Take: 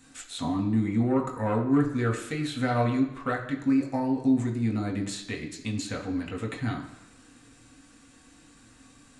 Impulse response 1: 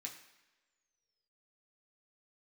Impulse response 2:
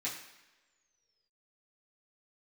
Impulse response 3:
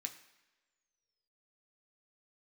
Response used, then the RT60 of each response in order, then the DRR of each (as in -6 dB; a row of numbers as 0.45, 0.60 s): 1; not exponential, not exponential, not exponential; -1.0, -8.5, 4.0 dB